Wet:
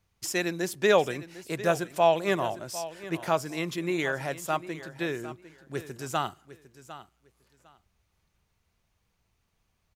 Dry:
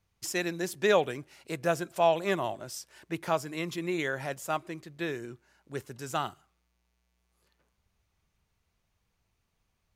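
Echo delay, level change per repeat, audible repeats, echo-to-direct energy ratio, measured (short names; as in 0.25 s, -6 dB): 0.753 s, -14.5 dB, 2, -15.0 dB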